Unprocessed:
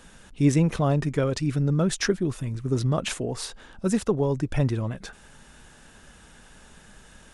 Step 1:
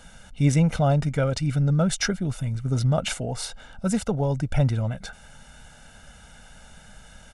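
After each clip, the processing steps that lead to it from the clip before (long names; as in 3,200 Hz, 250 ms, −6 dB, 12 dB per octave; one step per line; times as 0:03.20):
comb filter 1.4 ms, depth 68%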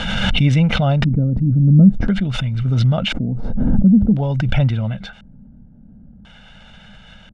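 auto-filter low-pass square 0.48 Hz 270–3,200 Hz
thirty-one-band graphic EQ 125 Hz +5 dB, 200 Hz +9 dB, 400 Hz −3 dB
background raised ahead of every attack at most 27 dB per second
level +1.5 dB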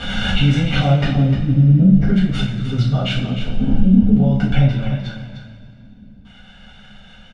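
on a send: single-tap delay 302 ms −9.5 dB
on the sum: coupled-rooms reverb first 0.43 s, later 2.5 s, from −16 dB, DRR −8 dB
level −9.5 dB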